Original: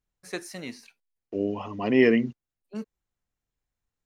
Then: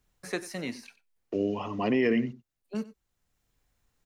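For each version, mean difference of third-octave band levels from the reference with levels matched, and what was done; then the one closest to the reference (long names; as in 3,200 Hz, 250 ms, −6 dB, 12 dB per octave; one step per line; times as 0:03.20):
4.5 dB: single-tap delay 93 ms −18.5 dB
brickwall limiter −13.5 dBFS, peak gain reduction 7 dB
multiband upward and downward compressor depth 40%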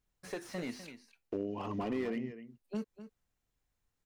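8.5 dB: downward compressor 6 to 1, threshold −36 dBFS, peak gain reduction 20.5 dB
slap from a distant wall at 43 metres, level −13 dB
slew-rate limiting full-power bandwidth 12 Hz
level +2.5 dB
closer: first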